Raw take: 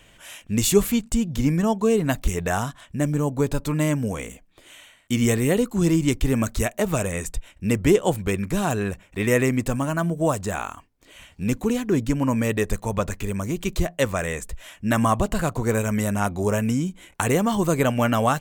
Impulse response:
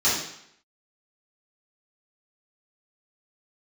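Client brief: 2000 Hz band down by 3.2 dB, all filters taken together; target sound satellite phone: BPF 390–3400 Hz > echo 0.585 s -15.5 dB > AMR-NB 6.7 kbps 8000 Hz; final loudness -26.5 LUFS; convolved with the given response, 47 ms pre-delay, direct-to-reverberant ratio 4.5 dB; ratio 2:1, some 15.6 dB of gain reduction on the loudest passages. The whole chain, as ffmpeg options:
-filter_complex "[0:a]equalizer=f=2k:t=o:g=-3.5,acompressor=threshold=-42dB:ratio=2,asplit=2[a][b];[1:a]atrim=start_sample=2205,adelay=47[c];[b][c]afir=irnorm=-1:irlink=0,volume=-20dB[d];[a][d]amix=inputs=2:normalize=0,highpass=390,lowpass=3.4k,aecho=1:1:585:0.168,volume=15dB" -ar 8000 -c:a libopencore_amrnb -b:a 6700

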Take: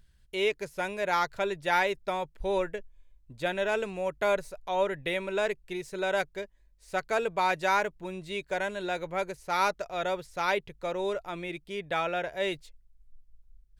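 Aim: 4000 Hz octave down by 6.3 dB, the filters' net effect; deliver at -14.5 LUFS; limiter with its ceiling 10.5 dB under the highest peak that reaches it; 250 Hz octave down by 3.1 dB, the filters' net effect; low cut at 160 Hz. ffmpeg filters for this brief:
-af "highpass=160,equalizer=f=250:t=o:g=-4.5,equalizer=f=4k:t=o:g=-8,volume=21dB,alimiter=limit=-3dB:level=0:latency=1"

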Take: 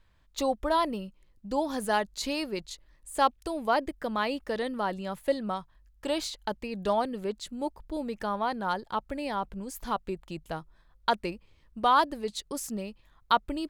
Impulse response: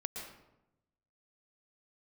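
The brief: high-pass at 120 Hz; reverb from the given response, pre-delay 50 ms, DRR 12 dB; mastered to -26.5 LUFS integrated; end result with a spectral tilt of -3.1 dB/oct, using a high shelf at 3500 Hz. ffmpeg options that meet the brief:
-filter_complex "[0:a]highpass=120,highshelf=f=3.5k:g=5,asplit=2[a][b];[1:a]atrim=start_sample=2205,adelay=50[c];[b][c]afir=irnorm=-1:irlink=0,volume=-12dB[d];[a][d]amix=inputs=2:normalize=0,volume=3.5dB"

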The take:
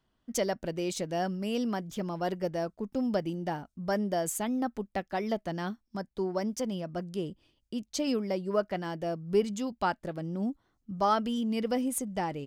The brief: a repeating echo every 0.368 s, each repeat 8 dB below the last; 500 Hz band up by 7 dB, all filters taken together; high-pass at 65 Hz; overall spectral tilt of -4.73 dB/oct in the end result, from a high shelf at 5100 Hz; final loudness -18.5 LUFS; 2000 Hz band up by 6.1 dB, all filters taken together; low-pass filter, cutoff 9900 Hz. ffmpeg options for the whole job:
-af "highpass=65,lowpass=9.9k,equalizer=f=500:t=o:g=8.5,equalizer=f=2k:t=o:g=6.5,highshelf=f=5.1k:g=5.5,aecho=1:1:368|736|1104|1472|1840:0.398|0.159|0.0637|0.0255|0.0102,volume=8.5dB"

